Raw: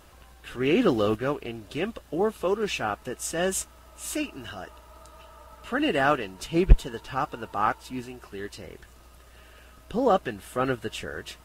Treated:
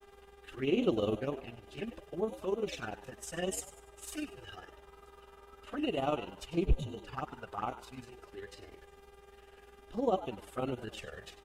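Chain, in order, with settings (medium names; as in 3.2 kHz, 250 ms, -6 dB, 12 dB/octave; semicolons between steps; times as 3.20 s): touch-sensitive flanger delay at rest 5 ms, full sweep at -22.5 dBFS; mains buzz 400 Hz, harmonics 9, -51 dBFS -7 dB/octave; granulator 75 ms, spray 13 ms, pitch spread up and down by 0 st; on a send: frequency-shifting echo 97 ms, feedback 38%, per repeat +100 Hz, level -14.5 dB; on the sum: trim -5 dB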